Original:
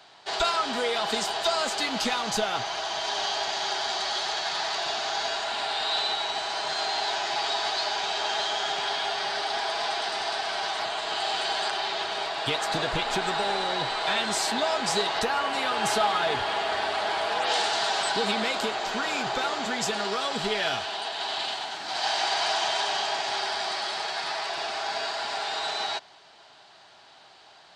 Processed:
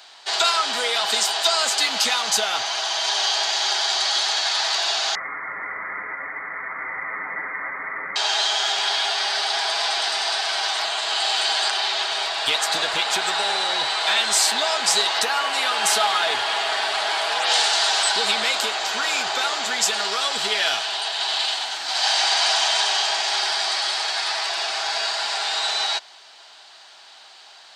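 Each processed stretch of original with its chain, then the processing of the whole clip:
0:05.15–0:08.16: high-pass filter 1,100 Hz + voice inversion scrambler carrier 2,800 Hz
whole clip: high-pass filter 1,100 Hz 6 dB per octave; high-shelf EQ 4,800 Hz +7 dB; level +6.5 dB

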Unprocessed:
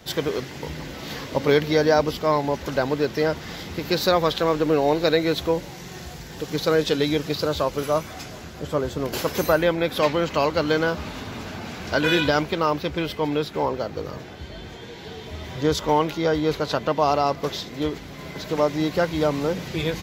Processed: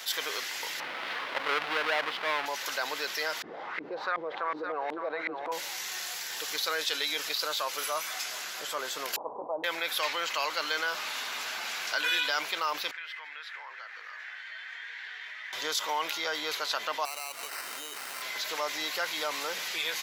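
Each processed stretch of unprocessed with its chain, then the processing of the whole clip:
0:00.80–0:02.46: each half-wave held at its own peak + high-frequency loss of the air 350 metres
0:03.42–0:05.52: auto-filter low-pass saw up 2.7 Hz 250–2,000 Hz + single-tap delay 559 ms −13 dB + downward compressor 1.5 to 1, threshold −23 dBFS
0:09.16–0:09.64: Butterworth low-pass 1,000 Hz 72 dB per octave + notch comb filter 180 Hz
0:12.91–0:15.53: downward compressor 2.5 to 1, threshold −33 dBFS + resonant band-pass 1,800 Hz, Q 4.2
0:17.05–0:18.22: downward compressor 12 to 1, threshold −34 dBFS + sample-rate reduction 3,400 Hz
whole clip: high-pass filter 1,300 Hz 12 dB per octave; parametric band 11,000 Hz +4.5 dB 0.99 octaves; envelope flattener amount 50%; level −4.5 dB

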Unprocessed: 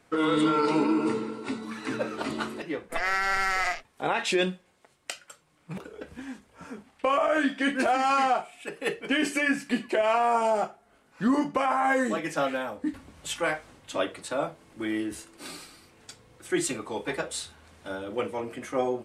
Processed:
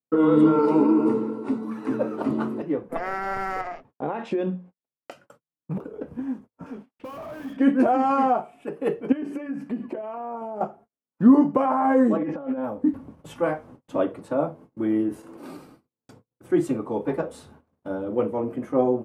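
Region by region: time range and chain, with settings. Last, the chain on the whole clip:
0:00.59–0:02.26: high-pass filter 220 Hz 6 dB per octave + high-shelf EQ 8,400 Hz +6.5 dB
0:03.61–0:05.11: high-frequency loss of the air 71 metres + mains-hum notches 60/120/180/240 Hz + downward compressor 4 to 1, threshold −27 dBFS
0:06.66–0:07.57: meter weighting curve D + tube saturation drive 38 dB, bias 0.25
0:09.12–0:10.61: high-shelf EQ 4,500 Hz −6.5 dB + downward compressor 12 to 1, threshold −33 dBFS
0:12.17–0:12.64: high-frequency loss of the air 280 metres + comb filter 3.6 ms, depth 43% + compressor whose output falls as the input rises −36 dBFS
0:15.09–0:15.57: noise gate −43 dBFS, range −13 dB + low-shelf EQ 230 Hz −7.5 dB + envelope flattener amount 70%
whole clip: noise gate −50 dBFS, range −43 dB; octave-band graphic EQ 125/250/500/1,000/2,000/4,000/8,000 Hz +11/+11/+7/+6/−5/−9/−11 dB; level −4 dB

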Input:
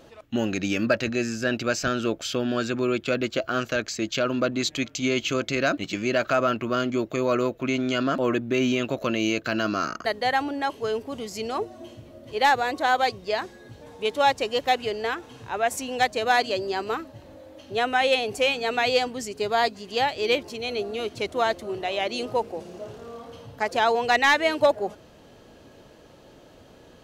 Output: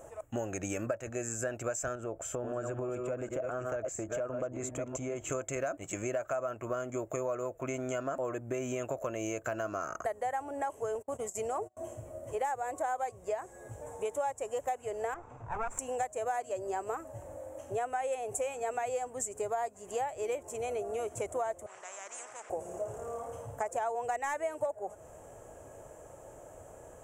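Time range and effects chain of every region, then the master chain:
0:01.95–0:05.30: delay that plays each chunk backwards 335 ms, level −7 dB + high-shelf EQ 2,000 Hz −11.5 dB + downward compressor 4 to 1, threshold −27 dBFS
0:10.95–0:11.77: high-pass filter 58 Hz + noise gate −37 dBFS, range −33 dB
0:15.14–0:15.79: lower of the sound and its delayed copy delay 0.81 ms + high-frequency loss of the air 180 metres + one half of a high-frequency compander decoder only
0:21.66–0:22.50: four-pole ladder band-pass 2,300 Hz, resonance 35% + high-frequency loss of the air 66 metres + every bin compressed towards the loudest bin 4 to 1
whole clip: drawn EQ curve 110 Hz 0 dB, 150 Hz −5 dB, 220 Hz −12 dB, 640 Hz +5 dB, 2,300 Hz −8 dB, 4,400 Hz −26 dB, 7,500 Hz +13 dB, 12,000 Hz +2 dB; downward compressor 6 to 1, threshold −32 dBFS

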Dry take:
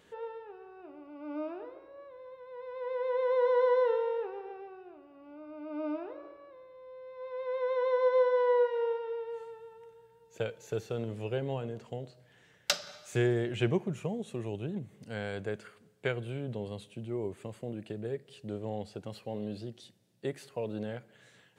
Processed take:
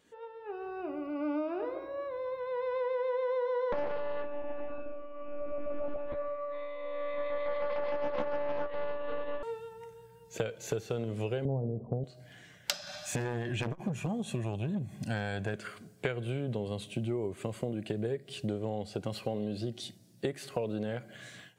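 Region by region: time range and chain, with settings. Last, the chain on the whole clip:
0:03.72–0:09.43: one-pitch LPC vocoder at 8 kHz 290 Hz + double-tracking delay 12 ms −4.5 dB + highs frequency-modulated by the lows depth 0.65 ms
0:11.45–0:12.04: inverse Chebyshev low-pass filter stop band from 1,700 Hz + low-shelf EQ 370 Hz +11.5 dB
0:12.74–0:15.54: hard clipping −25.5 dBFS + comb filter 1.2 ms, depth 50% + saturating transformer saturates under 410 Hz
whole clip: automatic gain control gain up to 12 dB; noise reduction from a noise print of the clip's start 8 dB; downward compressor 8 to 1, threshold −30 dBFS

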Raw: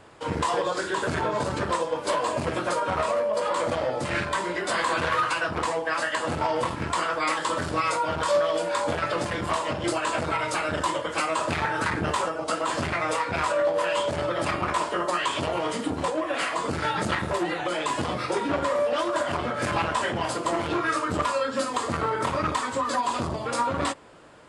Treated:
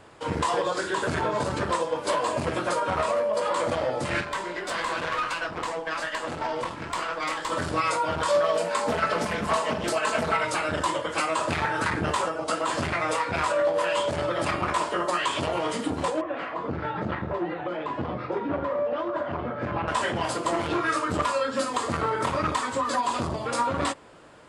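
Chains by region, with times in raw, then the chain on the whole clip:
0:04.21–0:07.52: low-pass filter 8,700 Hz + tube saturation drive 19 dB, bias 0.65 + low-shelf EQ 170 Hz −5.5 dB
0:08.43–0:10.45: notch filter 3,400 Hz + comb filter 4.6 ms, depth 66% + highs frequency-modulated by the lows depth 0.28 ms
0:16.21–0:19.88: high-pass filter 55 Hz + head-to-tape spacing loss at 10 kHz 41 dB
whole clip: no processing

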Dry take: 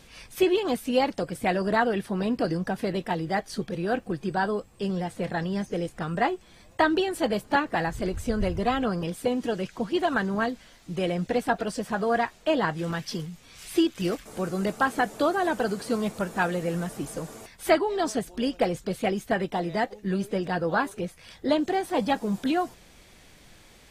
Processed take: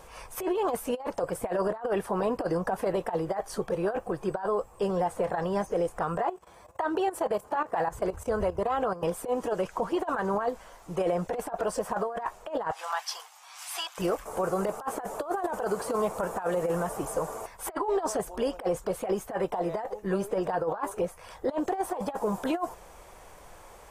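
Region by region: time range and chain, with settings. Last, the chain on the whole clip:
0:06.17–0:09.03: high-pass filter 62 Hz + output level in coarse steps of 14 dB
0:12.71–0:13.98: Chebyshev high-pass filter 740 Hz, order 4 + parametric band 4,300 Hz +7 dB 1.4 octaves
whole clip: octave-band graphic EQ 125/250/500/1,000/2,000/4,000 Hz −6/−10/+5/+10/−5/−11 dB; compressor whose output falls as the input rises −25 dBFS, ratio −0.5; brickwall limiter −19 dBFS

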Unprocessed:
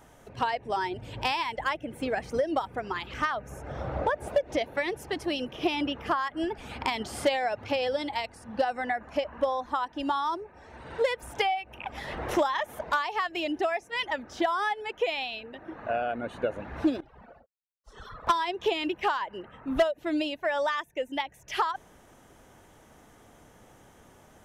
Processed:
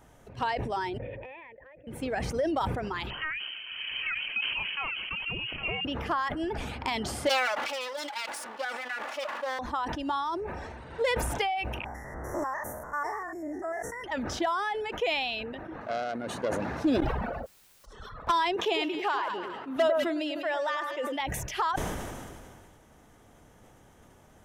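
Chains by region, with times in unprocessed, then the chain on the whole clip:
0:00.98–0:01.87: formant resonators in series e + downward compressor 10 to 1, threshold −45 dBFS
0:03.10–0:05.85: downward compressor 2 to 1, threshold −28 dBFS + single-tap delay 811 ms −10 dB + voice inversion scrambler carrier 3,100 Hz
0:07.29–0:09.59: lower of the sound and its delayed copy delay 3.5 ms + high-pass filter 740 Hz
0:11.85–0:14.04: spectrum averaged block by block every 100 ms + Chebyshev band-stop filter 2,000–5,600 Hz, order 5 + high-shelf EQ 10,000 Hz +8.5 dB
0:15.81–0:16.85: phase distortion by the signal itself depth 0.15 ms + high-pass filter 130 Hz + high shelf with overshoot 4,100 Hz +6.5 dB, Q 1.5
0:18.56–0:21.20: high-pass filter 290 Hz + delay that swaps between a low-pass and a high-pass 101 ms, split 1,700 Hz, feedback 60%, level −9 dB
whole clip: low-shelf EQ 170 Hz +5 dB; level that may fall only so fast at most 27 dB per second; level −3.5 dB

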